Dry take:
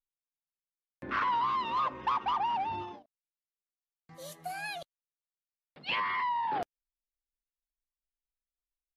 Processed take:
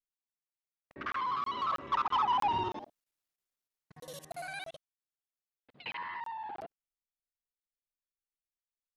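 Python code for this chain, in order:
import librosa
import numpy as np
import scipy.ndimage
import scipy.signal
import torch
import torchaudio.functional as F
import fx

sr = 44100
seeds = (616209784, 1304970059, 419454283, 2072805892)

y = fx.local_reverse(x, sr, ms=54.0)
y = fx.doppler_pass(y, sr, speed_mps=23, closest_m=12.0, pass_at_s=2.97)
y = fx.buffer_crackle(y, sr, first_s=0.8, period_s=0.32, block=1024, kind='zero')
y = y * librosa.db_to_amplitude(7.0)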